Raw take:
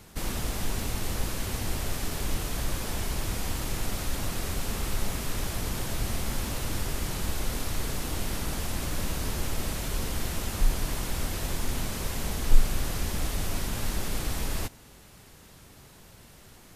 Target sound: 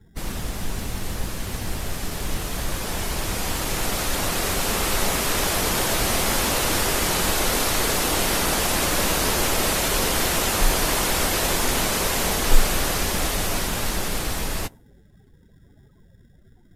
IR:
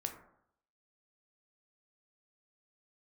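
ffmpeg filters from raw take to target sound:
-filter_complex "[0:a]afftdn=noise_reduction=29:noise_floor=-48,adynamicequalizer=threshold=0.00251:dfrequency=180:dqfactor=5.6:tfrequency=180:tqfactor=5.6:attack=5:release=100:ratio=0.375:range=2:mode=boostabove:tftype=bell,acrossover=split=310[link_01][link_02];[link_01]acrusher=samples=25:mix=1:aa=0.000001[link_03];[link_02]dynaudnorm=framelen=700:gausssize=11:maxgain=13dB[link_04];[link_03][link_04]amix=inputs=2:normalize=0,volume=2dB"

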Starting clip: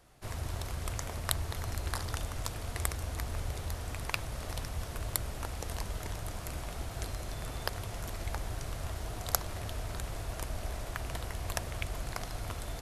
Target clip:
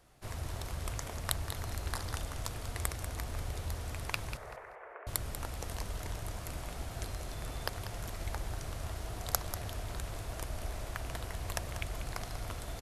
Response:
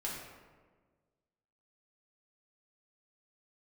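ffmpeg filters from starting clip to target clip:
-filter_complex "[0:a]asettb=1/sr,asplit=3[link_01][link_02][link_03];[link_01]atrim=end=4.374[link_04];[link_02]atrim=start=4.37:end=5.07,asetpts=PTS-STARTPTS,afade=type=in:duration=0.004:curve=qsin,afade=type=out:start_time=0.696:duration=0.004:curve=qsin,asuperpass=centerf=930:order=12:qfactor=0.51[link_05];[link_03]atrim=start=5.066[link_06];[link_04][link_05]acrossfade=duration=0.004:curve1=hsin:curve2=qsin[link_07];[link_07][link_06]acrossfade=duration=0.004:curve1=qsin:curve2=hsin,aecho=1:1:191|382|573:0.282|0.0648|0.0149,volume=-2dB"

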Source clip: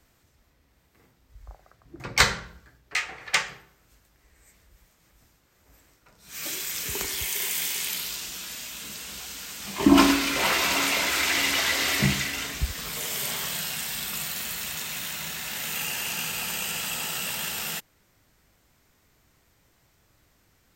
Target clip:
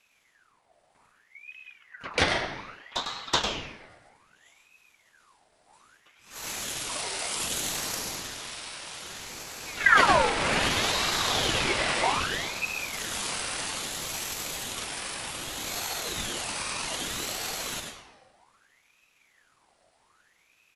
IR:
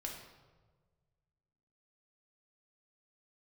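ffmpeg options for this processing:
-filter_complex "[0:a]asetrate=28595,aresample=44100,atempo=1.54221,asplit=2[link_01][link_02];[1:a]atrim=start_sample=2205,adelay=101[link_03];[link_02][link_03]afir=irnorm=-1:irlink=0,volume=-2dB[link_04];[link_01][link_04]amix=inputs=2:normalize=0,aeval=exprs='val(0)*sin(2*PI*1600*n/s+1600*0.6/0.63*sin(2*PI*0.63*n/s))':channel_layout=same"

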